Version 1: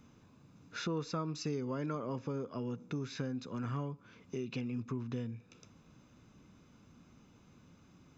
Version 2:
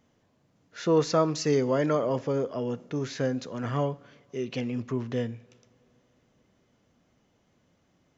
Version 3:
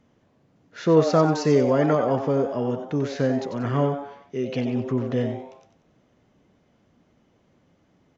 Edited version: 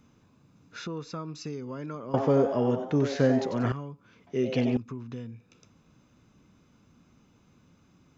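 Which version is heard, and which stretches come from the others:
1
0:02.14–0:03.72: punch in from 3
0:04.27–0:04.77: punch in from 3
not used: 2

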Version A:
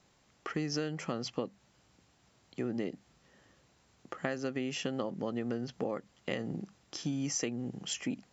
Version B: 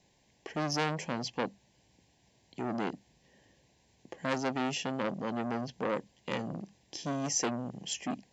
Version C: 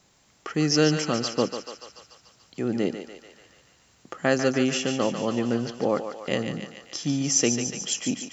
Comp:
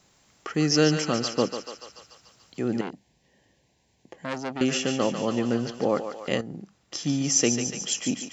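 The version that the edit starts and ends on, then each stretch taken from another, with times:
C
0:02.81–0:04.61: punch in from B
0:06.41–0:06.92: punch in from A

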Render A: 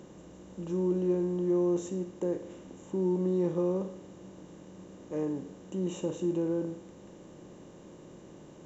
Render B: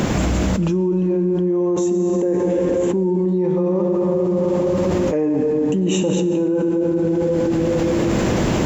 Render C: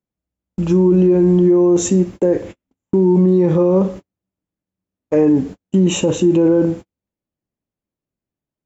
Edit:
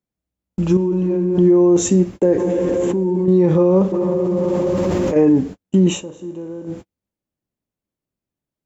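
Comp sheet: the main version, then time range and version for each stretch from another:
C
0:00.77–0:01.38: punch in from B
0:02.38–0:03.28: punch in from B
0:03.92–0:05.16: punch in from B
0:05.96–0:06.73: punch in from A, crossfade 0.16 s

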